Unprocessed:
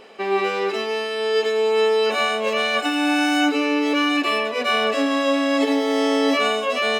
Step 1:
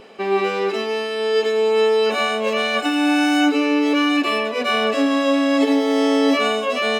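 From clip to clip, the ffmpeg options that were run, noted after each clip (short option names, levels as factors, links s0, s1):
-af "lowshelf=f=200:g=10.5,bandreject=f=1900:w=26"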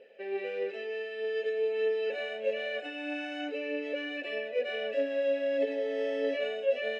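-filter_complex "[0:a]aphaser=in_gain=1:out_gain=1:delay=3:decay=0.28:speed=1.6:type=triangular,asplit=3[s0][s1][s2];[s0]bandpass=f=530:t=q:w=8,volume=1[s3];[s1]bandpass=f=1840:t=q:w=8,volume=0.501[s4];[s2]bandpass=f=2480:t=q:w=8,volume=0.355[s5];[s3][s4][s5]amix=inputs=3:normalize=0,volume=0.668"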